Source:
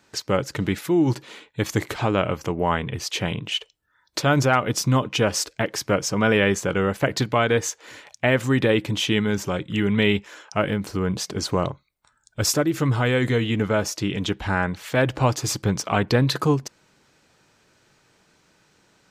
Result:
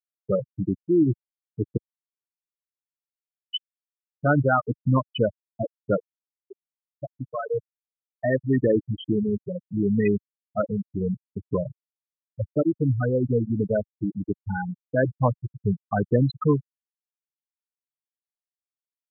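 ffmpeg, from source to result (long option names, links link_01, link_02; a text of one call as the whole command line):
ffmpeg -i in.wav -filter_complex "[0:a]asettb=1/sr,asplit=3[link_01][link_02][link_03];[link_01]atrim=end=1.774[link_04];[link_02]atrim=start=1.77:end=3.48,asetpts=PTS-STARTPTS,afade=type=in:duration=0.004:curve=qsin,afade=type=out:start_time=1.706:duration=0.004:curve=qsin,aderivative[link_05];[link_03]atrim=start=3.476[link_06];[link_04][link_05]acrossfade=duration=0.004:curve1=hsin:curve2=qsin[link_07];[link_07][link_06]acrossfade=duration=0.004:curve1=qsin:curve2=hsin,asplit=2[link_08][link_09];[link_08]atrim=end=6.07,asetpts=PTS-STARTPTS,afade=type=out:start_time=6.066:duration=0.004:curve=hsin:silence=0.149624[link_10];[link_09]atrim=start=6.07,asetpts=PTS-STARTPTS,afade=type=in:duration=2.58:silence=0.149624[link_11];[link_10][link_11]concat=n=2:v=0:a=1,lowpass=4000,afftfilt=real='re*gte(hypot(re,im),0.355)':imag='im*gte(hypot(re,im),0.355)':win_size=1024:overlap=0.75,highpass=93" out.wav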